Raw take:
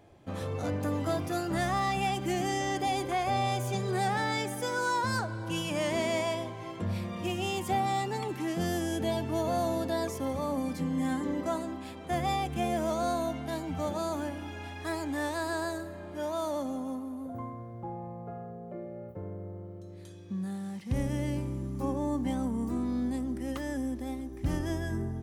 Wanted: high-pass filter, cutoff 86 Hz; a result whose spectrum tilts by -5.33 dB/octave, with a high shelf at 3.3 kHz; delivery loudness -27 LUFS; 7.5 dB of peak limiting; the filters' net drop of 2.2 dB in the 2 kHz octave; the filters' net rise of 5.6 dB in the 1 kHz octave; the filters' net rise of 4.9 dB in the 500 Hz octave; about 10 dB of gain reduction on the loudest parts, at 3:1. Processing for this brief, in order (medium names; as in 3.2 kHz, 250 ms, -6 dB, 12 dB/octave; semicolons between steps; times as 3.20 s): high-pass 86 Hz; peaking EQ 500 Hz +4.5 dB; peaking EQ 1 kHz +6.5 dB; peaking EQ 2 kHz -8 dB; treble shelf 3.3 kHz +7.5 dB; compression 3:1, threshold -35 dBFS; trim +12.5 dB; peak limiter -18.5 dBFS